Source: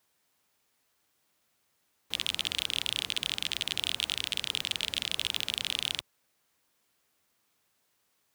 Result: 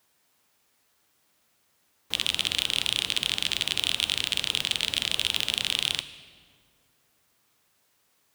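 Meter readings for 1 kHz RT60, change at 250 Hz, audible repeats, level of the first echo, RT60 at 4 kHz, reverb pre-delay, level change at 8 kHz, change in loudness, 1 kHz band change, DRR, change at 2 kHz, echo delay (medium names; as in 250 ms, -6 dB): 1.7 s, +5.5 dB, no echo, no echo, 1.3 s, 9 ms, +5.0 dB, +5.0 dB, +5.5 dB, 11.5 dB, +5.5 dB, no echo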